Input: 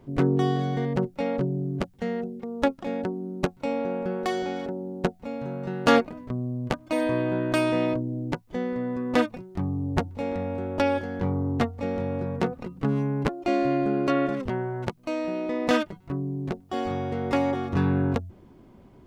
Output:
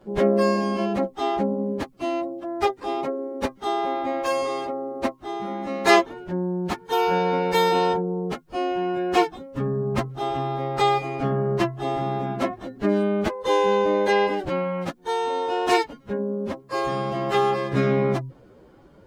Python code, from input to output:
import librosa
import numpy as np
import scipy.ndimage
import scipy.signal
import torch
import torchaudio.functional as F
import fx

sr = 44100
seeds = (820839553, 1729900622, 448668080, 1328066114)

y = fx.pitch_bins(x, sr, semitones=6.5)
y = y * 10.0 ** (4.5 / 20.0)